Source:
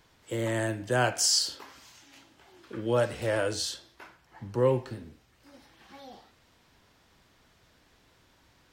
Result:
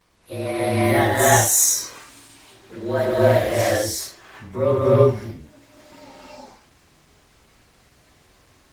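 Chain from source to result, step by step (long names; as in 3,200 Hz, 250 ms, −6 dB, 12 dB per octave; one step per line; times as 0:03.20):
partials spread apart or drawn together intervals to 109%
low-shelf EQ 120 Hz −3.5 dB
reverb whose tail is shaped and stops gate 380 ms rising, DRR −7.5 dB
level +5 dB
Opus 20 kbit/s 48,000 Hz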